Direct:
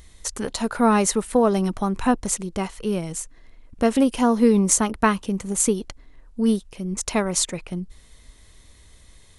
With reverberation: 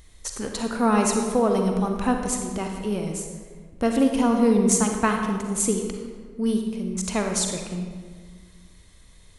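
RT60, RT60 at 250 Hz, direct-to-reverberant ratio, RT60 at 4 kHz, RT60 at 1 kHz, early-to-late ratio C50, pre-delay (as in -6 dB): 1.6 s, 2.0 s, 3.0 dB, 1.0 s, 1.5 s, 3.5 dB, 37 ms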